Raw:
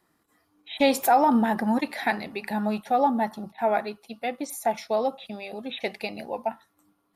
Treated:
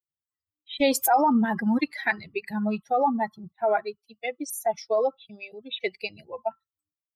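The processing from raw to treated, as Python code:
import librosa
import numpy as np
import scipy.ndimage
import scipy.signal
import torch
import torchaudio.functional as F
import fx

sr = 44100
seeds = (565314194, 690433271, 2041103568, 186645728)

p1 = fx.bin_expand(x, sr, power=2.0)
p2 = fx.over_compress(p1, sr, threshold_db=-27.0, ratio=-0.5)
y = p1 + F.gain(torch.from_numpy(p2), -2.0).numpy()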